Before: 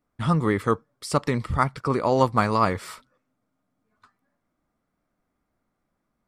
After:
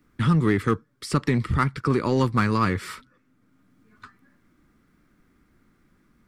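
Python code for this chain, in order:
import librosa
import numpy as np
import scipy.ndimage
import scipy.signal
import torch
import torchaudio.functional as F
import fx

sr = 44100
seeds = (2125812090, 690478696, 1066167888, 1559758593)

p1 = fx.curve_eq(x, sr, hz=(370.0, 660.0, 1600.0, 8100.0), db=(0, -15, 0, -5))
p2 = np.clip(p1, -10.0 ** (-23.0 / 20.0), 10.0 ** (-23.0 / 20.0))
p3 = p1 + (p2 * 10.0 ** (-4.5 / 20.0))
y = fx.band_squash(p3, sr, depth_pct=40)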